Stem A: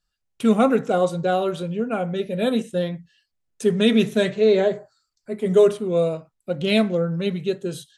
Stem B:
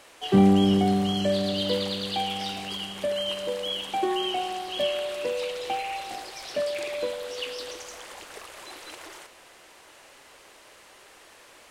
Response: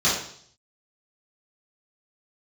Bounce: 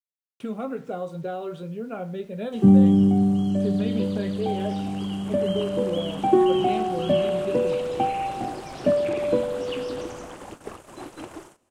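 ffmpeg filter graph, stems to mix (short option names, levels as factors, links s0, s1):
-filter_complex "[0:a]acompressor=threshold=0.1:ratio=6,acrusher=bits=7:mix=0:aa=0.000001,flanger=delay=9.3:depth=4:regen=-63:speed=0.38:shape=triangular,volume=0.75[s0];[1:a]agate=range=0.0631:threshold=0.00794:ratio=16:detection=peak,equalizer=f=125:t=o:w=1:g=8,equalizer=f=250:t=o:w=1:g=7,equalizer=f=500:t=o:w=1:g=-5,equalizer=f=1000:t=o:w=1:g=-3,equalizer=f=2000:t=o:w=1:g=-10,equalizer=f=4000:t=o:w=1:g=-8,equalizer=f=8000:t=o:w=1:g=6,dynaudnorm=f=270:g=13:m=5.31,adelay=2300,volume=0.75[s1];[s0][s1]amix=inputs=2:normalize=0,acrossover=split=3600[s2][s3];[s3]acompressor=threshold=0.00708:ratio=4:attack=1:release=60[s4];[s2][s4]amix=inputs=2:normalize=0,highshelf=f=3300:g=-10"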